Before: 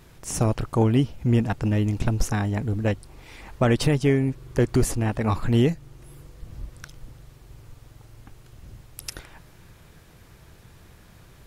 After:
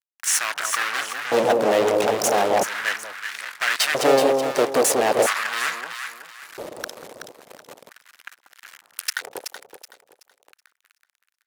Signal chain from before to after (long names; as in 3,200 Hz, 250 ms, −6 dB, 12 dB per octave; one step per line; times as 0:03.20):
fuzz pedal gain 33 dB, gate −40 dBFS
delay that swaps between a low-pass and a high-pass 188 ms, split 950 Hz, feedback 55%, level −2 dB
auto-filter high-pass square 0.38 Hz 510–1,600 Hz
level −2.5 dB